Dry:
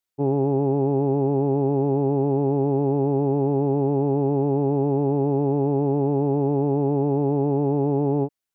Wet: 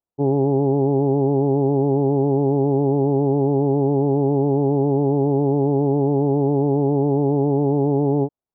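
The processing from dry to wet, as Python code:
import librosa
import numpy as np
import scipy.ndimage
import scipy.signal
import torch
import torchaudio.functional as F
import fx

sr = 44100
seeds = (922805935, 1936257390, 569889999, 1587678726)

y = scipy.signal.sosfilt(scipy.signal.butter(4, 1000.0, 'lowpass', fs=sr, output='sos'), x)
y = y * 10.0 ** (3.0 / 20.0)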